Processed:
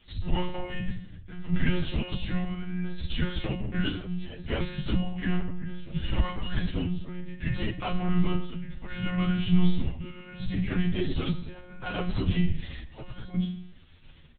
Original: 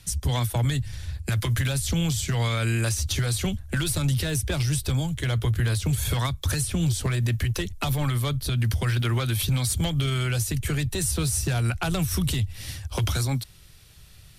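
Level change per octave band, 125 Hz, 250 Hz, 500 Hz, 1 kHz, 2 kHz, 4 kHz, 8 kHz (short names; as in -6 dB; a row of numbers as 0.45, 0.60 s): -8.0 dB, +1.0 dB, -4.0 dB, -4.5 dB, -5.5 dB, -7.5 dB, under -40 dB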